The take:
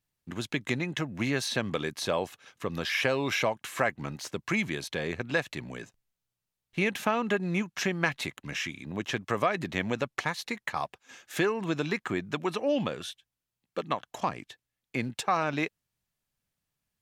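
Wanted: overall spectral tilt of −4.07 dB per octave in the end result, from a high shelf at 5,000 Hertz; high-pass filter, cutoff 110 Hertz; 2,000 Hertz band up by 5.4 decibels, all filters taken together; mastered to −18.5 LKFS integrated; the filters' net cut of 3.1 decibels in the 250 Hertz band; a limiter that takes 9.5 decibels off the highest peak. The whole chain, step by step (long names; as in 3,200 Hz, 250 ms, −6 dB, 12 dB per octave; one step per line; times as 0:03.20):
high-pass filter 110 Hz
parametric band 250 Hz −4 dB
parametric band 2,000 Hz +7.5 dB
high-shelf EQ 5,000 Hz −5.5 dB
level +12.5 dB
brickwall limiter −3.5 dBFS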